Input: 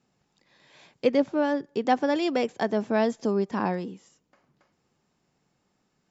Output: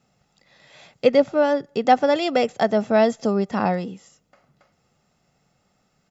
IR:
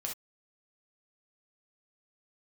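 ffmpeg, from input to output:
-af "aecho=1:1:1.5:0.47,volume=5.5dB"

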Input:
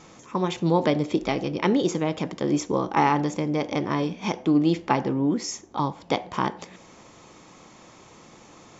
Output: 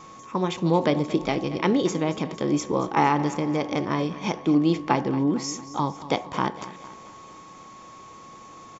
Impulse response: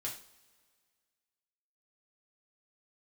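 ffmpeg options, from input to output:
-af "aecho=1:1:228|456|684|912|1140:0.168|0.0873|0.0454|0.0236|0.0123,aeval=exprs='val(0)+0.00631*sin(2*PI*1100*n/s)':channel_layout=same"

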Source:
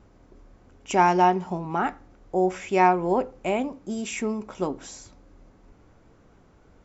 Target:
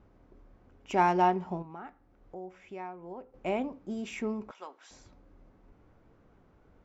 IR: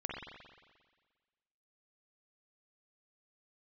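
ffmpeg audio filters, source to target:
-filter_complex "[0:a]asettb=1/sr,asplit=3[link_01][link_02][link_03];[link_01]atrim=end=1.624[link_04];[link_02]atrim=start=1.62:end=3.34,asetpts=PTS-STARTPTS,afade=type=in:duration=0.004:curve=qsin,afade=type=out:start_time=1.716:duration=0.004:curve=qsin,acompressor=threshold=-47dB:ratio=2[link_05];[link_03]atrim=start=3.336[link_06];[link_04][link_05]acrossfade=duration=0.004:curve1=hsin:curve2=qsin[link_07];[link_07][link_06]acrossfade=duration=0.004:curve1=qsin:curve2=hsin,asettb=1/sr,asplit=3[link_08][link_09][link_10];[link_08]atrim=end=4.514[link_11];[link_09]atrim=start=4.51:end=4.91,asetpts=PTS-STARTPTS,afade=type=in:duration=0.004:curve=qsin,afade=type=out:start_time=0.396:duration=0.004:curve=qsin,highpass=1100[link_12];[link_10]atrim=start=4.906[link_13];[link_11][link_12]acrossfade=duration=0.004:curve1=hsin:curve2=qsin[link_14];[link_14][link_13]acrossfade=duration=0.004:curve1=qsin:curve2=hsin,adynamicsmooth=sensitivity=1:basefreq=4200,volume=-5.5dB"

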